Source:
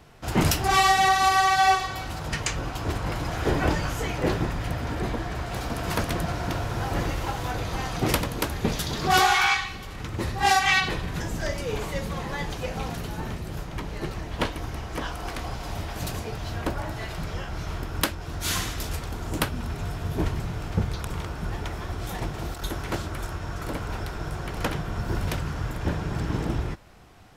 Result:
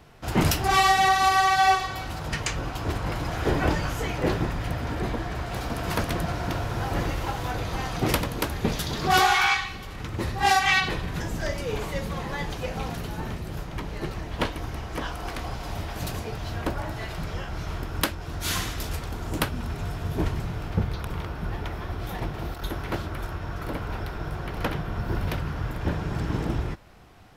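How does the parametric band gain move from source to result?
parametric band 7,600 Hz 1 octave
0:20.37 −2.5 dB
0:20.91 −10.5 dB
0:25.53 −10.5 dB
0:26.12 −3.5 dB

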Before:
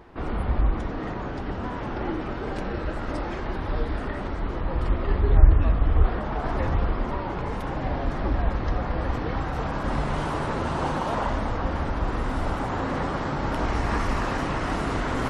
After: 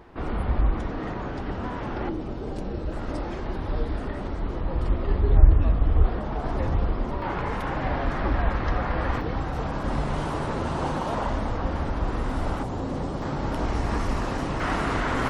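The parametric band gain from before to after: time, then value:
parametric band 1,700 Hz 2 octaves
−0.5 dB
from 0:02.09 −12 dB
from 0:02.92 −5 dB
from 0:07.22 +5 dB
from 0:09.21 −3 dB
from 0:12.63 −12 dB
from 0:13.22 −5 dB
from 0:14.60 +3.5 dB

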